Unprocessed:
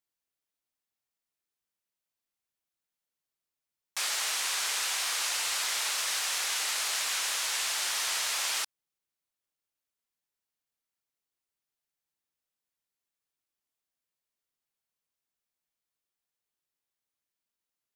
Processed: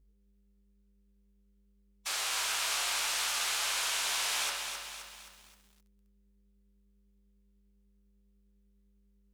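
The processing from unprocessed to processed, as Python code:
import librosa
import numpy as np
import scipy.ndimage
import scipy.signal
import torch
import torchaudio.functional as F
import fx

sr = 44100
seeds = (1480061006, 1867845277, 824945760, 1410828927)

y = fx.dmg_buzz(x, sr, base_hz=50.0, harmonics=10, level_db=-65.0, tilt_db=-9, odd_only=False)
y = fx.rev_spring(y, sr, rt60_s=1.5, pass_ms=(35, 42), chirp_ms=25, drr_db=0.0)
y = fx.dynamic_eq(y, sr, hz=1900.0, q=5.4, threshold_db=-52.0, ratio=4.0, max_db=-4)
y = fx.stretch_vocoder(y, sr, factor=0.52)
y = fx.echo_crushed(y, sr, ms=262, feedback_pct=55, bits=9, wet_db=-6.0)
y = F.gain(torch.from_numpy(y), -1.5).numpy()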